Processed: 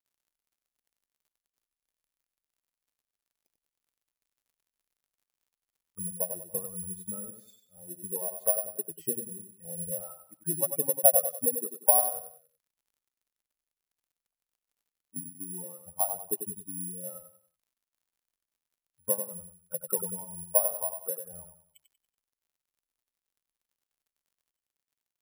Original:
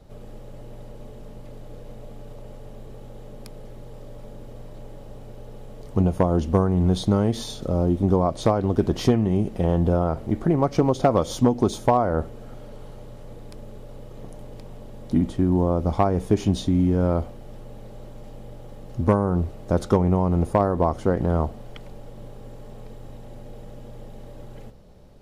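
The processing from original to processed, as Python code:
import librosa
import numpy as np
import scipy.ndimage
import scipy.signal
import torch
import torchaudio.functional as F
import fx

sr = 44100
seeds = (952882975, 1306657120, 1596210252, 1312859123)

p1 = fx.bin_expand(x, sr, power=3.0)
p2 = fx.peak_eq(p1, sr, hz=7300.0, db=-4.5, octaves=0.77)
p3 = fx.auto_wah(p2, sr, base_hz=610.0, top_hz=4100.0, q=3.7, full_db=-28.5, direction='down')
p4 = fx.graphic_eq_31(p3, sr, hz=(160, 2000, 4000), db=(12, -6, -10))
p5 = fx.dmg_crackle(p4, sr, seeds[0], per_s=93.0, level_db=-70.0)
p6 = p5 + fx.echo_feedback(p5, sr, ms=94, feedback_pct=35, wet_db=-7.5, dry=0)
y = (np.kron(p6[::4], np.eye(4)[0]) * 4)[:len(p6)]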